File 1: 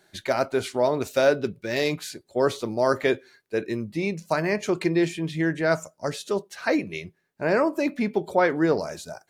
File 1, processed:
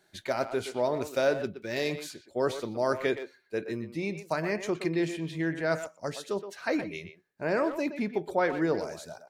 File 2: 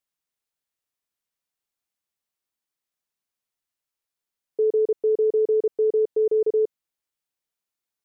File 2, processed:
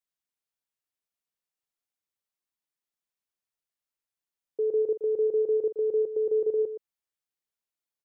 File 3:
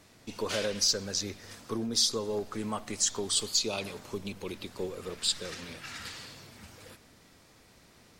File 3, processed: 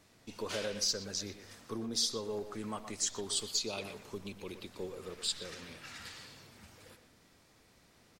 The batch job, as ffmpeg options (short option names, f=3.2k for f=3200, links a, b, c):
-filter_complex "[0:a]asplit=2[a][b];[b]adelay=120,highpass=300,lowpass=3.4k,asoftclip=type=hard:threshold=-16.5dB,volume=-9dB[c];[a][c]amix=inputs=2:normalize=0,volume=-6dB"